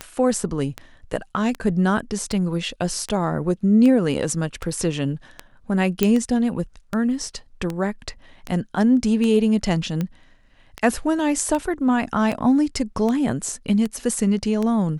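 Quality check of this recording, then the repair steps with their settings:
scratch tick 78 rpm −13 dBFS
0:06.03: click −4 dBFS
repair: click removal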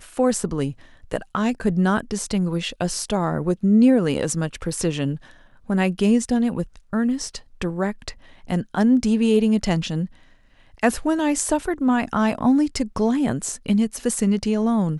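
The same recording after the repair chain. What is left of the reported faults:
none of them is left

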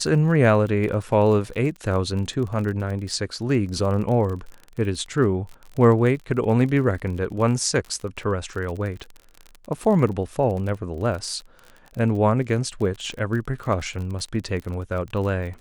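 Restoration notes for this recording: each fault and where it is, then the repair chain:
surface crackle 37 per second −30 dBFS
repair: click removal

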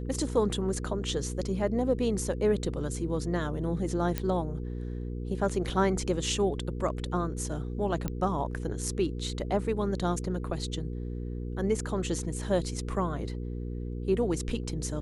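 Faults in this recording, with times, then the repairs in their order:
mains hum 60 Hz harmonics 8 −35 dBFS
0:04.18: click −14 dBFS
0:08.08: click −18 dBFS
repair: click removal
hum removal 60 Hz, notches 8

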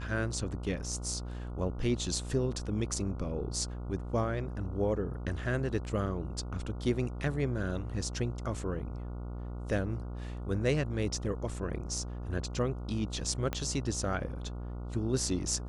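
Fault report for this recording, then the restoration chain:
mains buzz 60 Hz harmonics 24 −39 dBFS
0:13.53: click −17 dBFS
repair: click removal
hum removal 60 Hz, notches 24

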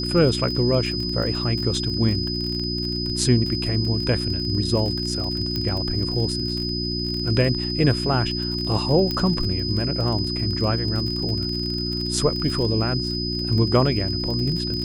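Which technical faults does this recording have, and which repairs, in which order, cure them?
surface crackle 31 per second −27 dBFS
mains hum 60 Hz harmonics 6 −28 dBFS
whistle 5,000 Hz −27 dBFS
0:05.56: click −13 dBFS
0:09.11: click −12 dBFS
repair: click removal
hum removal 60 Hz, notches 6
notch filter 5,000 Hz, Q 30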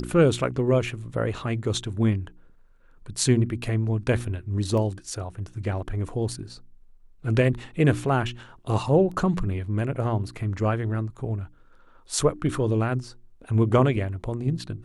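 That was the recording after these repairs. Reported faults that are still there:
0:05.56: click
0:09.11: click

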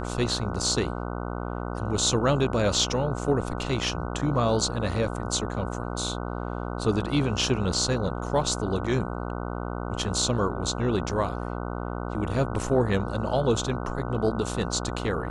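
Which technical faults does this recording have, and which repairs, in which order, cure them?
mains buzz 60 Hz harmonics 25 −32 dBFS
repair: hum removal 60 Hz, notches 25

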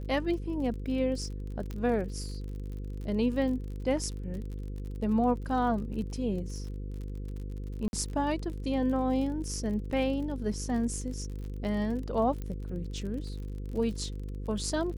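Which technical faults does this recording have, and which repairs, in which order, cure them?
mains buzz 50 Hz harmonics 10 −37 dBFS
surface crackle 45 per second −39 dBFS
0:01.71: click −25 dBFS
0:07.88–0:07.93: drop-out 51 ms
0:12.42: click −25 dBFS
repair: click removal
hum removal 50 Hz, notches 10
repair the gap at 0:07.88, 51 ms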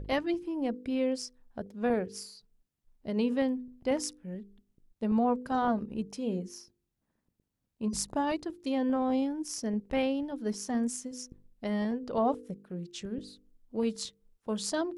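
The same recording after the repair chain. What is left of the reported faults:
0:01.71: click

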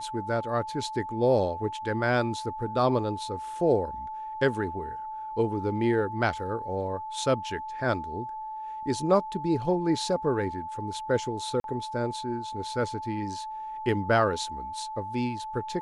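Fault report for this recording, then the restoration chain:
whistle 870 Hz −34 dBFS
0:11.60–0:11.64: drop-out 42 ms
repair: notch filter 870 Hz, Q 30
repair the gap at 0:11.60, 42 ms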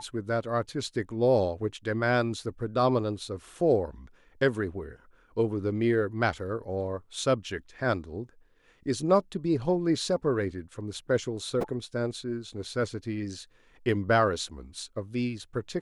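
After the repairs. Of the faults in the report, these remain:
none of them is left

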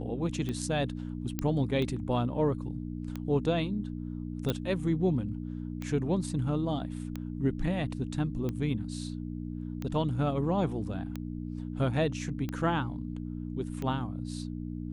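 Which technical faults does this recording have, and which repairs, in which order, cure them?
mains hum 60 Hz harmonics 5 −37 dBFS
scratch tick 45 rpm −22 dBFS
0:01.39: click −16 dBFS
0:04.50: click −15 dBFS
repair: click removal
hum removal 60 Hz, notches 5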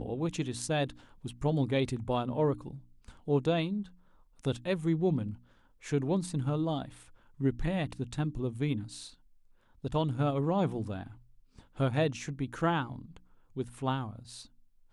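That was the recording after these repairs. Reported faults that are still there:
none of them is left

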